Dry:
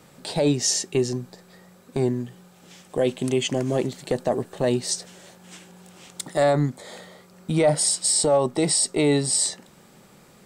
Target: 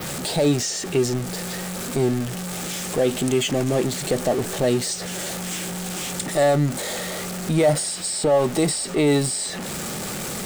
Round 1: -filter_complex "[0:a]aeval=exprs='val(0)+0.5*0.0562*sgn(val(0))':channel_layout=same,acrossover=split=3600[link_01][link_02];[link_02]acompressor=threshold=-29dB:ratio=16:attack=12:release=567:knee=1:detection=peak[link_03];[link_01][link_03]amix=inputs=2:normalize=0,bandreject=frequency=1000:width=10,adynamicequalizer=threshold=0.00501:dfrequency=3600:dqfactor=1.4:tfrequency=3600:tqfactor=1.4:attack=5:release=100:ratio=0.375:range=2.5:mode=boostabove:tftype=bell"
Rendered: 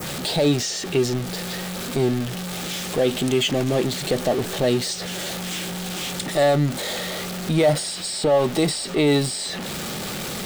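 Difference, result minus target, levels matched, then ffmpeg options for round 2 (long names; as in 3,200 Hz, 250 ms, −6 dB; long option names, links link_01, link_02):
8,000 Hz band −3.5 dB
-filter_complex "[0:a]aeval=exprs='val(0)+0.5*0.0562*sgn(val(0))':channel_layout=same,acrossover=split=3600[link_01][link_02];[link_02]acompressor=threshold=-29dB:ratio=16:attack=12:release=567:knee=1:detection=peak[link_03];[link_01][link_03]amix=inputs=2:normalize=0,bandreject=frequency=1000:width=10,adynamicequalizer=threshold=0.00501:dfrequency=8200:dqfactor=1.4:tfrequency=8200:tqfactor=1.4:attack=5:release=100:ratio=0.375:range=2.5:mode=boostabove:tftype=bell"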